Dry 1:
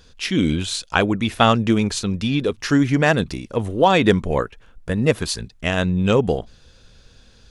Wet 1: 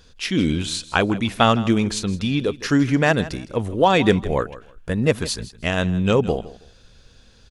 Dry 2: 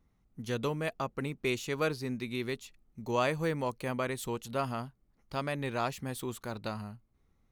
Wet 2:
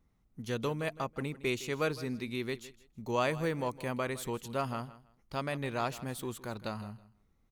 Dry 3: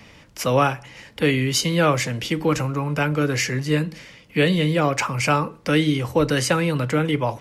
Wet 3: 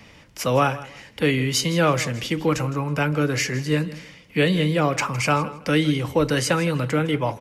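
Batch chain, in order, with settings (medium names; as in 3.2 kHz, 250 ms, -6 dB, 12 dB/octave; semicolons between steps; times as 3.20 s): feedback delay 161 ms, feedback 21%, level -17 dB; trim -1 dB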